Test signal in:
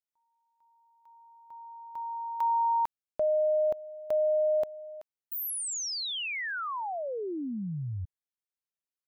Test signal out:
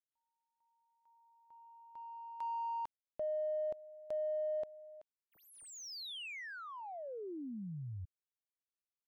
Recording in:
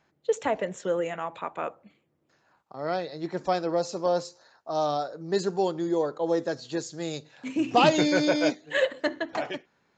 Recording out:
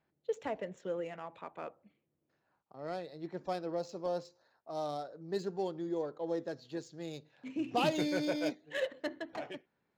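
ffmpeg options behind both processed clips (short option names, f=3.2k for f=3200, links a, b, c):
-af "adynamicsmooth=sensitivity=5.5:basefreq=3.7k,equalizer=f=1.2k:t=o:w=1.6:g=-4,volume=-9dB"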